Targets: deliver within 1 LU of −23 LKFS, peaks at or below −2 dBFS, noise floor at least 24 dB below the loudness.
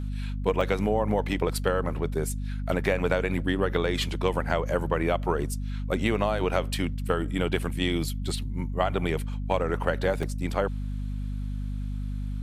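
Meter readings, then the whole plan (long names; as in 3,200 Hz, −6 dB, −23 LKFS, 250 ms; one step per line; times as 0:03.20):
number of dropouts 2; longest dropout 3.2 ms; mains hum 50 Hz; hum harmonics up to 250 Hz; level of the hum −29 dBFS; integrated loudness −28.0 LKFS; sample peak −7.5 dBFS; target loudness −23.0 LKFS
→ repair the gap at 0:00.61/0:10.23, 3.2 ms
hum removal 50 Hz, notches 5
level +5 dB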